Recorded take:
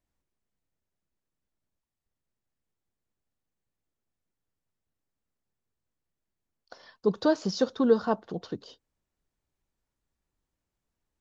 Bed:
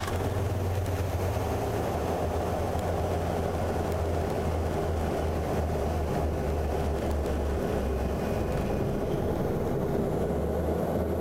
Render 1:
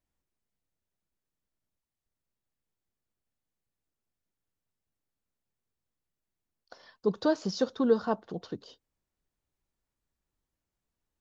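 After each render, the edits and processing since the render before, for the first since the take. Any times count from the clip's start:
level −2.5 dB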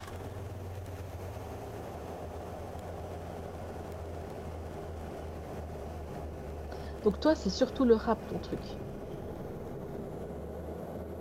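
mix in bed −12.5 dB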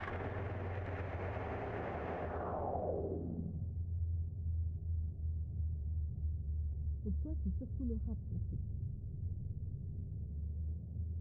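low-pass filter sweep 2,000 Hz → 100 Hz, 0:02.22–0:03.79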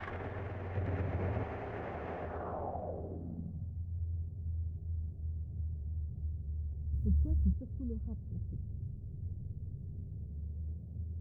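0:00.75–0:01.44: parametric band 170 Hz +9.5 dB 2.6 octaves
0:02.70–0:03.95: parametric band 400 Hz −7 dB
0:06.93–0:07.53: bass and treble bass +9 dB, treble +14 dB

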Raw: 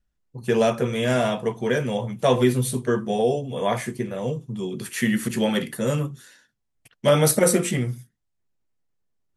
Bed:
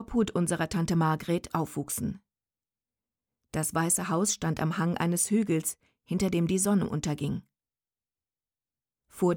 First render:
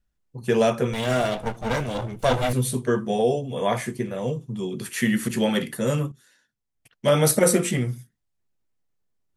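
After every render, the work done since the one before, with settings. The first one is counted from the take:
0:00.93–0:02.53: lower of the sound and its delayed copy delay 1.4 ms
0:06.12–0:07.37: fade in linear, from −12.5 dB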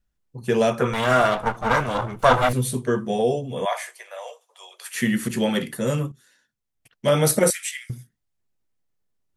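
0:00.79–0:02.49: parametric band 1,200 Hz +12.5 dB 1.2 octaves
0:03.65–0:04.95: Butterworth high-pass 590 Hz 48 dB per octave
0:07.50–0:07.90: Butterworth high-pass 1,700 Hz 48 dB per octave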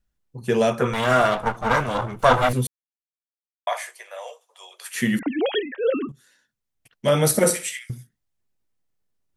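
0:02.67–0:03.67: silence
0:05.19–0:06.09: three sine waves on the formant tracks
0:07.28–0:07.79: flutter between parallel walls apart 10.8 metres, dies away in 0.34 s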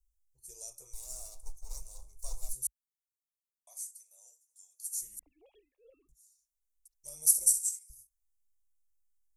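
inverse Chebyshev band-stop filter 100–3,400 Hz, stop band 40 dB
parametric band 1,900 Hz −9.5 dB 0.23 octaves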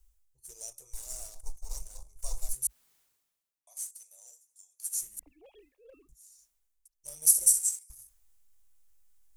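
reversed playback
upward compression, threshold −45 dBFS
reversed playback
leveller curve on the samples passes 1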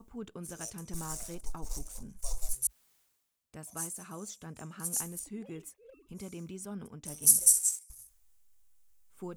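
mix in bed −16.5 dB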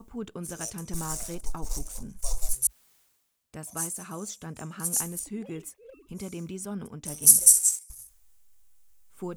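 level +6 dB

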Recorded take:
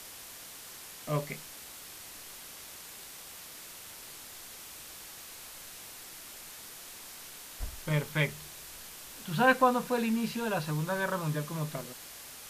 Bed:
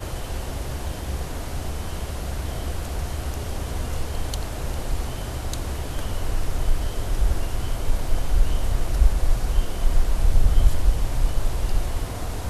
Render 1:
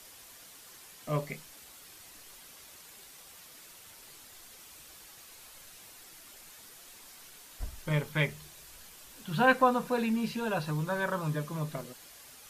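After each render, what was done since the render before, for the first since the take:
broadband denoise 7 dB, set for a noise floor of −48 dBFS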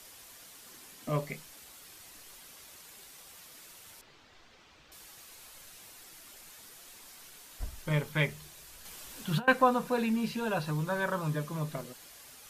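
0:00.63–0:01.10: parametric band 260 Hz +9 dB
0:04.01–0:04.92: high-frequency loss of the air 190 metres
0:08.85–0:09.48: compressor whose output falls as the input rises −31 dBFS, ratio −0.5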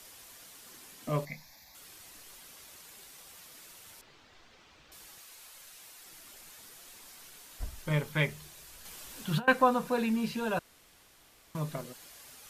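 0:01.25–0:01.75: phaser with its sweep stopped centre 2,000 Hz, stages 8
0:05.18–0:06.06: low-shelf EQ 430 Hz −8.5 dB
0:10.59–0:11.55: fill with room tone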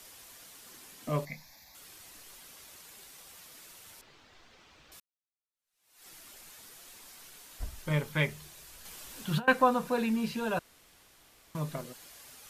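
0:05.00–0:06.06: fade in exponential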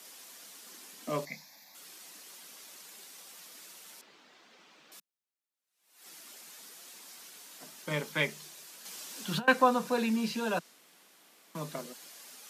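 Butterworth high-pass 170 Hz 48 dB per octave
dynamic equaliser 5,600 Hz, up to +6 dB, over −56 dBFS, Q 0.97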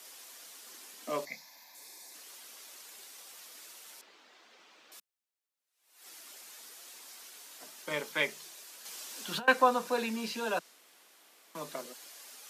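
high-pass filter 320 Hz 12 dB per octave
0:01.48–0:02.12: healed spectral selection 870–3,500 Hz before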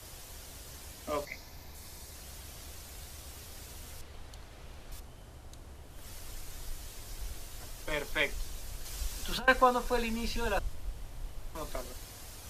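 mix in bed −21 dB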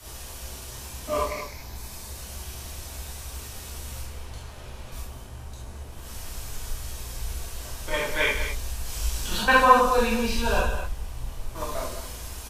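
loudspeakers that aren't time-aligned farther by 35 metres −10 dB, 71 metres −10 dB
reverb whose tail is shaped and stops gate 100 ms flat, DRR −7 dB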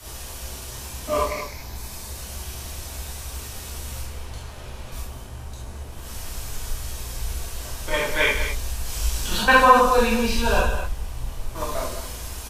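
level +3.5 dB
brickwall limiter −2 dBFS, peak gain reduction 2.5 dB

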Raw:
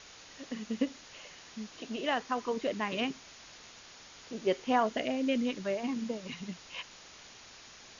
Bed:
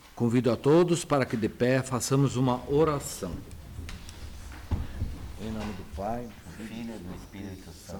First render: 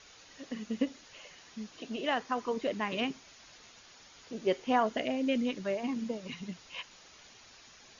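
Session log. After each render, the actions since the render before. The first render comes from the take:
broadband denoise 6 dB, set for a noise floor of −53 dBFS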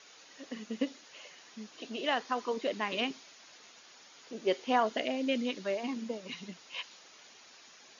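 high-pass filter 240 Hz 12 dB per octave
dynamic equaliser 4,100 Hz, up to +5 dB, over −54 dBFS, Q 1.5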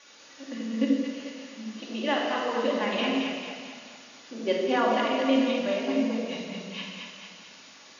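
echo with a time of its own for lows and highs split 650 Hz, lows 85 ms, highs 223 ms, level −5 dB
rectangular room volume 1,400 cubic metres, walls mixed, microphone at 2.4 metres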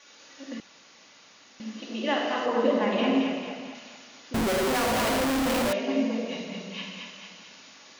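0:00.60–0:01.60: fill with room tone
0:02.46–0:03.75: tilt shelving filter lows +4.5 dB, about 1,400 Hz
0:04.34–0:05.73: comparator with hysteresis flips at −37 dBFS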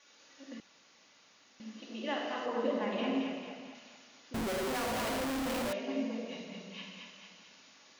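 level −9 dB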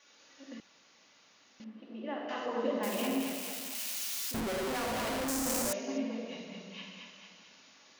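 0:01.64–0:02.29: head-to-tape spacing loss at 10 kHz 38 dB
0:02.83–0:04.40: spike at every zero crossing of −28.5 dBFS
0:05.28–0:05.98: high shelf with overshoot 4,800 Hz +11.5 dB, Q 1.5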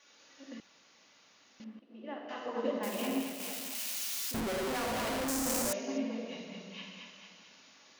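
0:01.79–0:03.40: expander for the loud parts, over −51 dBFS

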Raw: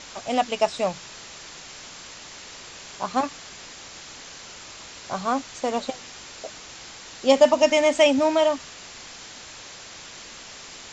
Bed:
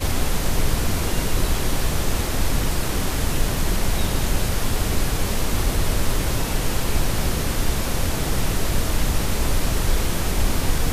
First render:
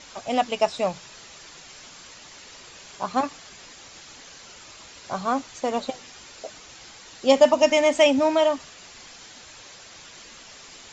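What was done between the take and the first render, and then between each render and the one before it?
broadband denoise 6 dB, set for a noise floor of −42 dBFS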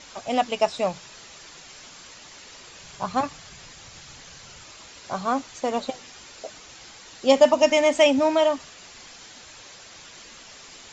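0:02.79–0:04.64: low shelf with overshoot 190 Hz +7.5 dB, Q 1.5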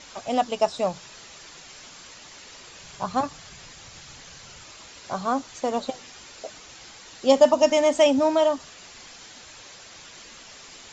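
dynamic equaliser 2,300 Hz, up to −7 dB, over −42 dBFS, Q 1.8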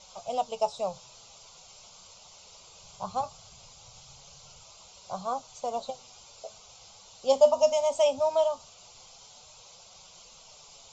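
phaser with its sweep stopped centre 730 Hz, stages 4
flanger 0.2 Hz, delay 5.2 ms, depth 6.6 ms, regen +69%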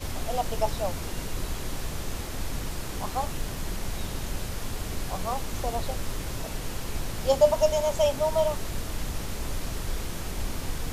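mix in bed −11 dB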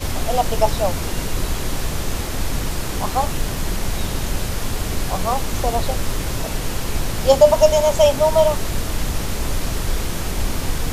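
level +9.5 dB
brickwall limiter −1 dBFS, peak gain reduction 2 dB

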